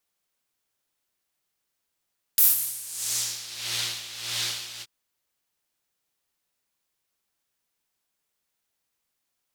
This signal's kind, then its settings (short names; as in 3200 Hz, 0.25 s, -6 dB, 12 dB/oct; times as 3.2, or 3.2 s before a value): synth patch with tremolo A#2, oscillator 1 triangle, interval 0 st, detune 26 cents, noise -5.5 dB, filter bandpass, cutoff 3800 Hz, Q 1.5, filter envelope 2 oct, filter decay 1.25 s, filter sustain 0%, attack 1.9 ms, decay 0.17 s, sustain -15 dB, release 0.05 s, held 2.43 s, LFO 1.6 Hz, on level 12 dB